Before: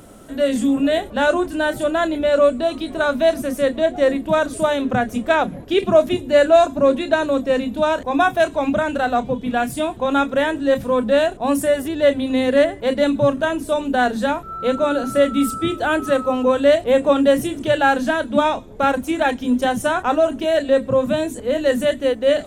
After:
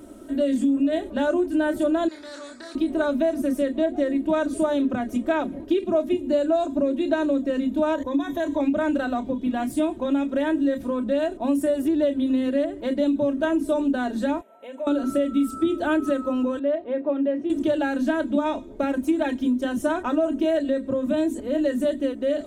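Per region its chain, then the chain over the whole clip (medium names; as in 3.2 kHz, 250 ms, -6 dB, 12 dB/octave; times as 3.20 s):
2.08–2.75 s: two resonant band-passes 2.8 kHz, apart 1.5 oct + doubling 29 ms -6 dB + spectrum-flattening compressor 2:1
7.95–8.60 s: rippled EQ curve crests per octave 1.1, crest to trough 11 dB + compression 3:1, threshold -21 dBFS
14.41–14.87 s: high-pass 300 Hz 24 dB/octave + compression 4:1, threshold -25 dBFS + static phaser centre 1.3 kHz, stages 6
16.59–17.50 s: high-pass 620 Hz 6 dB/octave + tape spacing loss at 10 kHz 43 dB
whole clip: peaking EQ 320 Hz +10 dB 1.3 oct; compression, threshold -14 dBFS; comb 3.2 ms, depth 62%; trim -8 dB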